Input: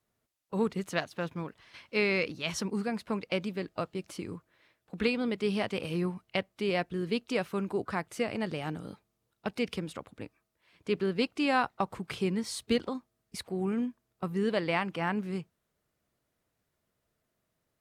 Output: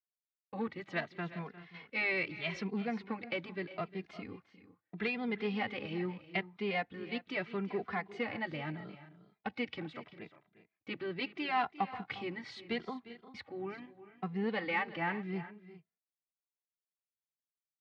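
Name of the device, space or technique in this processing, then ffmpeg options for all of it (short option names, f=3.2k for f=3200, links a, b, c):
barber-pole flanger into a guitar amplifier: -filter_complex "[0:a]agate=range=-32dB:threshold=-58dB:ratio=16:detection=peak,bandreject=f=930:w=15,asplit=2[a][b];[b]adelay=2.5,afreqshift=0.78[c];[a][c]amix=inputs=2:normalize=1,asoftclip=type=tanh:threshold=-23.5dB,highpass=110,equalizer=f=540:t=q:w=4:g=-4,equalizer=f=790:t=q:w=4:g=6,equalizer=f=2k:t=q:w=4:g=9,lowpass=f=4.1k:w=0.5412,lowpass=f=4.1k:w=1.3066,aecho=1:1:353|387:0.141|0.133,volume=-2dB"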